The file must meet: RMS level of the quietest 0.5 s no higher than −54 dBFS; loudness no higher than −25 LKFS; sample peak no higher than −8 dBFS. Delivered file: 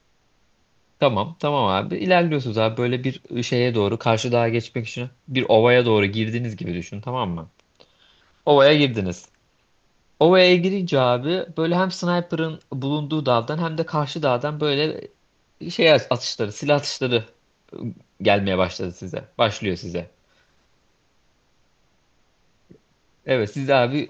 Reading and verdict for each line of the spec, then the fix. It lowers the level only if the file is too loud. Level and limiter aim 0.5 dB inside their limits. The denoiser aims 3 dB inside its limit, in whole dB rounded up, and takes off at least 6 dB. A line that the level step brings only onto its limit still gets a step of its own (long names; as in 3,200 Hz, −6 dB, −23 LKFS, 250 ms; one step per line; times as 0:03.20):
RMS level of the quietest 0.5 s −63 dBFS: in spec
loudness −21.0 LKFS: out of spec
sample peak −3.5 dBFS: out of spec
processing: level −4.5 dB
brickwall limiter −8.5 dBFS